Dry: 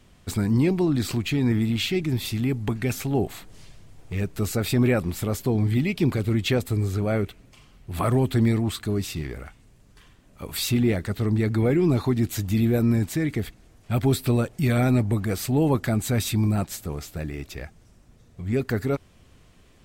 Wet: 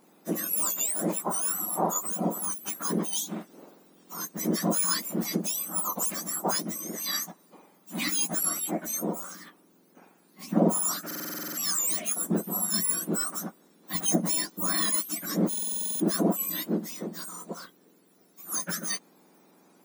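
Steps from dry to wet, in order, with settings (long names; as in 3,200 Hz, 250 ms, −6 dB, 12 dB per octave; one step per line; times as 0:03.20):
frequency axis turned over on the octave scale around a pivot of 1,600 Hz
buffer that repeats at 0:11.06/0:15.49, samples 2,048, times 10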